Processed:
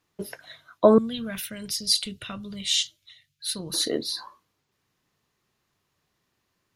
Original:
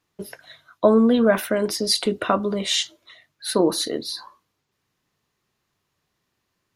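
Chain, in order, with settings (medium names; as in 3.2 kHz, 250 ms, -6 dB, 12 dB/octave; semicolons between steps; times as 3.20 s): 0.98–3.74 s: FFT filter 140 Hz 0 dB, 310 Hz -22 dB, 960 Hz -23 dB, 3 kHz -1 dB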